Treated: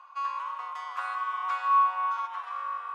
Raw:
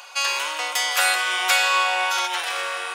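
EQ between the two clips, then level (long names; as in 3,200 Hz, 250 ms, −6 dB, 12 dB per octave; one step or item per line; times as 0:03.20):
resonant band-pass 1,100 Hz, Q 12
+2.5 dB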